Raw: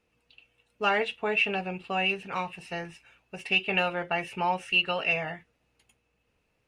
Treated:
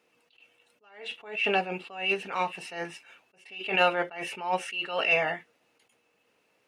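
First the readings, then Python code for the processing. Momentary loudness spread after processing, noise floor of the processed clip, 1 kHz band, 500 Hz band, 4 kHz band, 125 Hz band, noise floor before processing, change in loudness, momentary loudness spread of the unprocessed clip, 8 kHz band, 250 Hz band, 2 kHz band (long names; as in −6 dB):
16 LU, −71 dBFS, −0.5 dB, +0.5 dB, −2.5 dB, −5.5 dB, −74 dBFS, −1.0 dB, 13 LU, +4.0 dB, −3.0 dB, −1.5 dB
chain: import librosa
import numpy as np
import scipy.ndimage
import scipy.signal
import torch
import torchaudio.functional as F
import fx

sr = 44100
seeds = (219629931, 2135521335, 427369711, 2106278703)

y = scipy.signal.sosfilt(scipy.signal.butter(2, 290.0, 'highpass', fs=sr, output='sos'), x)
y = fx.notch(y, sr, hz=2500.0, q=25.0)
y = fx.attack_slew(y, sr, db_per_s=110.0)
y = y * librosa.db_to_amplitude(6.5)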